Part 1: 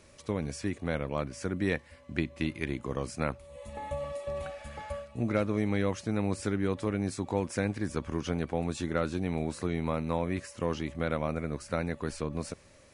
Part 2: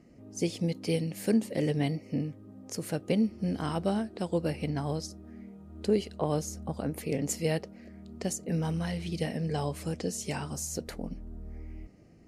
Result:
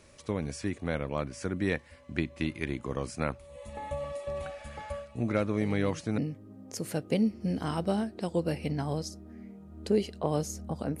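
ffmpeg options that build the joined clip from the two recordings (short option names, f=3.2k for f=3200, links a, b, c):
-filter_complex "[1:a]asplit=2[a][b];[0:a]apad=whole_dur=11,atrim=end=11,atrim=end=6.182[c];[b]atrim=start=2.158:end=6.98[d];[a]atrim=start=1.59:end=2.16,asetpts=PTS-STARTPTS,volume=-13dB,afade=t=in:d=0.004:c=hsin,afade=t=out:st=0.566:d=0.004:c=hsin,adelay=247401S[e];[c][d]acrossfade=d=0.004:c1=hsin:c2=hsin[f];[f][e]amix=inputs=2:normalize=0"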